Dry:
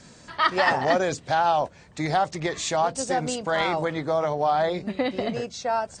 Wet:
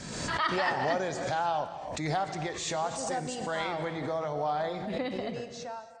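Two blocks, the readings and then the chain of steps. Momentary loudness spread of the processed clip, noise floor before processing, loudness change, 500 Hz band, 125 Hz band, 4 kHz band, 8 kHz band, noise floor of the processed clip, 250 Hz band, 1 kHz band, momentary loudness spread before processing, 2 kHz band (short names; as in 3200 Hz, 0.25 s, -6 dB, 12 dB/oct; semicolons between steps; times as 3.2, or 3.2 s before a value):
8 LU, -51 dBFS, -7.0 dB, -7.5 dB, -4.5 dB, -6.0 dB, -5.0 dB, -43 dBFS, -6.5 dB, -7.5 dB, 7 LU, -6.5 dB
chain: ending faded out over 0.62 s; non-linear reverb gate 0.32 s flat, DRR 9.5 dB; backwards sustainer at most 38 dB/s; gain -8.5 dB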